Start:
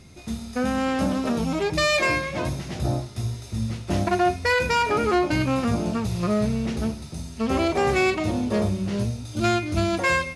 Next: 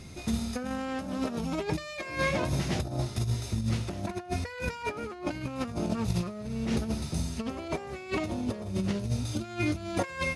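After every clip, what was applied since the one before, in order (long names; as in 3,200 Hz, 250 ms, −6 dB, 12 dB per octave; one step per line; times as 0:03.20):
compressor whose output falls as the input rises −28 dBFS, ratio −0.5
level −2.5 dB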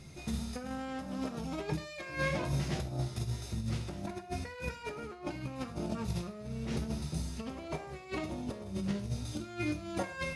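reverb whose tail is shaped and stops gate 160 ms falling, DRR 7 dB
level −6.5 dB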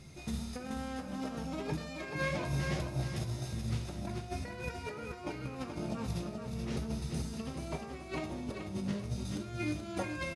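repeating echo 430 ms, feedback 32%, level −6 dB
level −1.5 dB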